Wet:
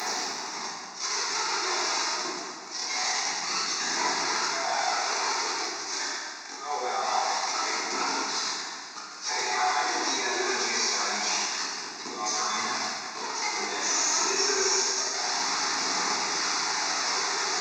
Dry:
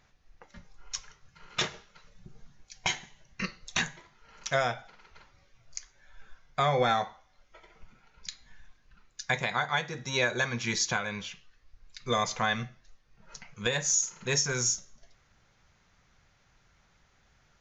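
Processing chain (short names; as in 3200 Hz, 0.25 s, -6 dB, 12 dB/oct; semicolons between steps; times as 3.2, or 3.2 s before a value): delta modulation 32 kbps, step -29.5 dBFS; HPF 400 Hz 24 dB/oct; bell 1500 Hz -15 dB 1.2 oct; in parallel at +1 dB: negative-ratio compressor -37 dBFS, ratio -0.5; on the sum: auto swell 0.106 s; limiter -27.5 dBFS, peak gain reduction 10.5 dB; auto swell 0.11 s; fixed phaser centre 1300 Hz, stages 4; phaser 0.25 Hz, delay 3.3 ms, feedback 41%; plate-style reverb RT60 2.1 s, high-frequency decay 0.75×, DRR -6.5 dB; gain +8 dB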